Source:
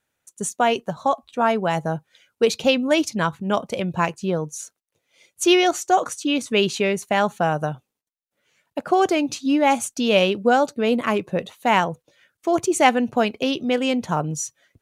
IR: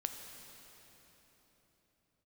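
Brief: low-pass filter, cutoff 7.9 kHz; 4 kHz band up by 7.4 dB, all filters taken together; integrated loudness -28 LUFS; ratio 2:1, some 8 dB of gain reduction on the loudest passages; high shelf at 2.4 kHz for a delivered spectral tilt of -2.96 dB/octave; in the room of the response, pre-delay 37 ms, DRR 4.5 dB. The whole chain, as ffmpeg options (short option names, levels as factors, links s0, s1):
-filter_complex "[0:a]lowpass=7900,highshelf=f=2400:g=8.5,equalizer=f=4000:t=o:g=3,acompressor=threshold=0.0708:ratio=2,asplit=2[s0][s1];[1:a]atrim=start_sample=2205,adelay=37[s2];[s1][s2]afir=irnorm=-1:irlink=0,volume=0.596[s3];[s0][s3]amix=inputs=2:normalize=0,volume=0.562"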